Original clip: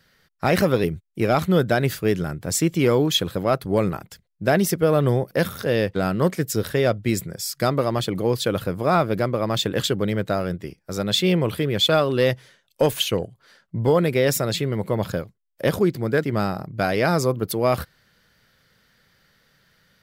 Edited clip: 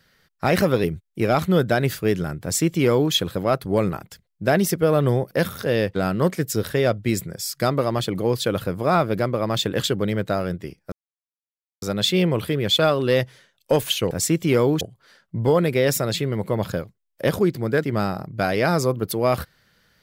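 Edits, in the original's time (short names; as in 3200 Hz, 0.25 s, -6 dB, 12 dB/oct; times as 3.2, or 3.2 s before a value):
2.43–3.13 copy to 13.21
10.92 insert silence 0.90 s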